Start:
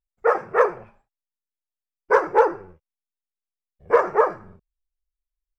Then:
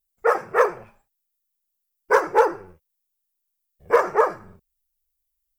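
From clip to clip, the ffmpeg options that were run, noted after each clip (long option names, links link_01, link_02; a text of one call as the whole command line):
ffmpeg -i in.wav -af "aemphasis=mode=production:type=75fm" out.wav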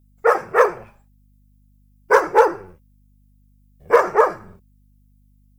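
ffmpeg -i in.wav -af "aeval=exprs='val(0)+0.00126*(sin(2*PI*50*n/s)+sin(2*PI*2*50*n/s)/2+sin(2*PI*3*50*n/s)/3+sin(2*PI*4*50*n/s)/4+sin(2*PI*5*50*n/s)/5)':channel_layout=same,volume=3.5dB" out.wav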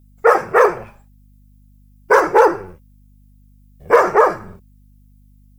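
ffmpeg -i in.wav -af "alimiter=limit=-8dB:level=0:latency=1:release=21,volume=6.5dB" out.wav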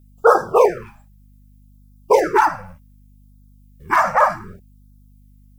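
ffmpeg -i in.wav -af "afftfilt=real='re*(1-between(b*sr/1024,350*pow(2400/350,0.5+0.5*sin(2*PI*0.66*pts/sr))/1.41,350*pow(2400/350,0.5+0.5*sin(2*PI*0.66*pts/sr))*1.41))':imag='im*(1-between(b*sr/1024,350*pow(2400/350,0.5+0.5*sin(2*PI*0.66*pts/sr))/1.41,350*pow(2400/350,0.5+0.5*sin(2*PI*0.66*pts/sr))*1.41))':win_size=1024:overlap=0.75" out.wav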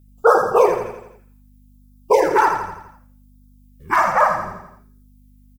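ffmpeg -i in.wav -af "aecho=1:1:84|168|252|336|420|504:0.447|0.228|0.116|0.0593|0.0302|0.0154,volume=-1dB" out.wav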